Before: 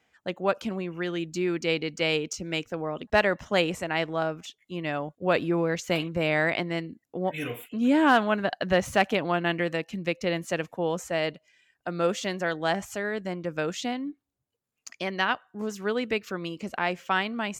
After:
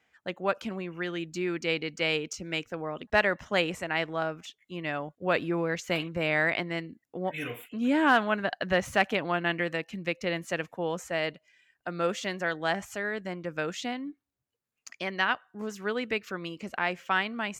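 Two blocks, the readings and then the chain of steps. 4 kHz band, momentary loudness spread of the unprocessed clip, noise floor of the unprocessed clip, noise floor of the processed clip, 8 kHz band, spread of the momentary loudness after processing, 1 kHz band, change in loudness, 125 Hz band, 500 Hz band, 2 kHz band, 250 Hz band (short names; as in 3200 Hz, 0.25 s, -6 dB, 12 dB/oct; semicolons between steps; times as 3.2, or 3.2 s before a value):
-2.0 dB, 10 LU, -80 dBFS, -83 dBFS, -3.5 dB, 11 LU, -2.0 dB, -2.0 dB, -4.0 dB, -3.5 dB, 0.0 dB, -4.0 dB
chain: bell 1800 Hz +4.5 dB 1.5 oct; gain -4 dB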